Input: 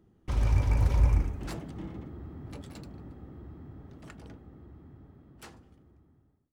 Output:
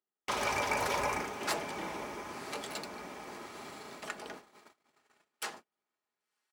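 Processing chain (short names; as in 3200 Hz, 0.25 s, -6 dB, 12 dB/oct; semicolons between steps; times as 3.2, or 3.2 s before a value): HPF 590 Hz 12 dB/oct; in parallel at -9.5 dB: soft clip -39.5 dBFS, distortion -13 dB; on the sum: comb 4.8 ms, depth 31%; on a send: diffused feedback echo 1.059 s, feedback 50%, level -11.5 dB; on the sum: gate -56 dBFS, range -38 dB; mismatched tape noise reduction encoder only; gain +8.5 dB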